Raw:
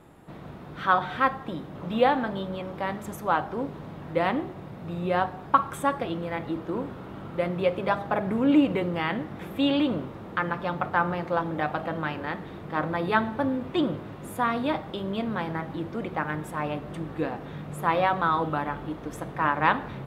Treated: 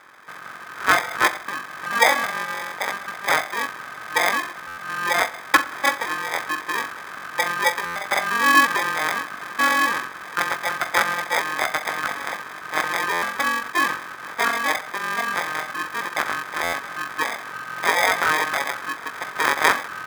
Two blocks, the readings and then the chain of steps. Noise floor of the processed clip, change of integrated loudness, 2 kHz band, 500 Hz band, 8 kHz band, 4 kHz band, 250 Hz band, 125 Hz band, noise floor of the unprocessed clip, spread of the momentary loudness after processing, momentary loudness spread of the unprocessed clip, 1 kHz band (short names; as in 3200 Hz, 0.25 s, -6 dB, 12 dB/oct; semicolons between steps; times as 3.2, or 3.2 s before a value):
-38 dBFS, +5.5 dB, +12.0 dB, -1.5 dB, n/a, +11.0 dB, -9.0 dB, -12.0 dB, -42 dBFS, 12 LU, 12 LU, +4.5 dB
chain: sample-and-hold 31×; ring modulator 1400 Hz; stuck buffer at 4.67/7.85/13.12/16.63, samples 512, times 8; gain +7 dB